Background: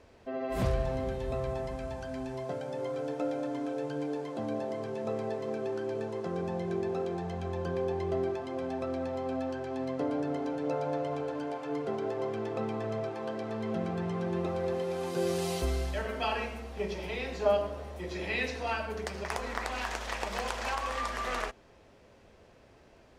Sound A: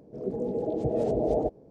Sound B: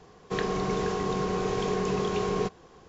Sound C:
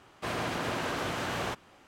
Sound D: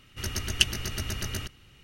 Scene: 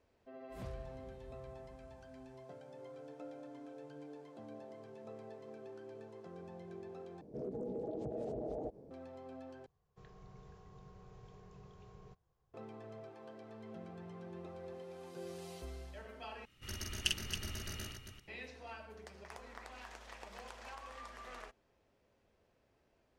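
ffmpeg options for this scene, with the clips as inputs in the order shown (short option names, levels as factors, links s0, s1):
-filter_complex "[0:a]volume=0.15[s0];[1:a]acompressor=threshold=0.0178:ratio=6:attack=3.2:release=140:knee=1:detection=peak[s1];[2:a]firequalizer=gain_entry='entry(120,0);entry(220,-18);entry(330,-18);entry(600,-12);entry(2200,-16)':delay=0.05:min_phase=1[s2];[4:a]aecho=1:1:46.65|274.1:0.708|0.447[s3];[s0]asplit=4[s4][s5][s6][s7];[s4]atrim=end=7.214[s8];[s1]atrim=end=1.7,asetpts=PTS-STARTPTS,volume=0.708[s9];[s5]atrim=start=8.906:end=9.664[s10];[s2]atrim=end=2.88,asetpts=PTS-STARTPTS,volume=0.133[s11];[s6]atrim=start=12.536:end=16.454[s12];[s3]atrim=end=1.83,asetpts=PTS-STARTPTS,volume=0.237[s13];[s7]atrim=start=18.276[s14];[s8][s9]acrossfade=d=0.004:c1=hsin:c2=hsin[s15];[s15][s10]acrossfade=d=0.004:c1=hsin:c2=hsin[s16];[s16][s11]acrossfade=d=0.004:c1=hsin:c2=hsin[s17];[s17][s12]acrossfade=d=0.004:c1=hsin:c2=hsin[s18];[s18][s13]acrossfade=d=0.004:c1=hsin:c2=hsin[s19];[s19][s14]acrossfade=d=0.004:c1=hsin:c2=hsin"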